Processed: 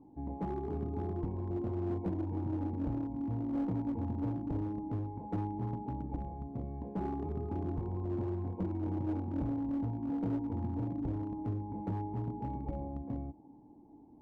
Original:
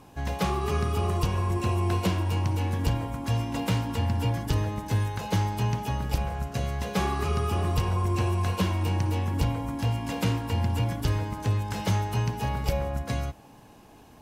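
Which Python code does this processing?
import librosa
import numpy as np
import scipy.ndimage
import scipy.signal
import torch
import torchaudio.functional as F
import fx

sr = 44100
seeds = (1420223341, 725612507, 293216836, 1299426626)

y = fx.formant_cascade(x, sr, vowel='u')
y = fx.clip_asym(y, sr, top_db=-35.0, bottom_db=-29.0)
y = y * librosa.db_to_amplitude(3.0)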